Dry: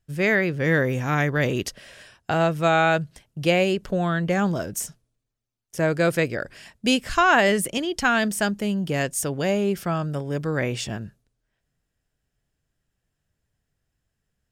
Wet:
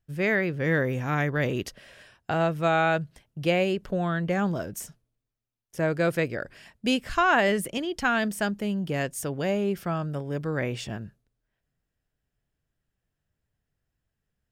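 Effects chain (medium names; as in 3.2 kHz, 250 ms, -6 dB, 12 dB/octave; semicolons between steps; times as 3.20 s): peaking EQ 7.4 kHz -5.5 dB 1.7 oct; trim -3.5 dB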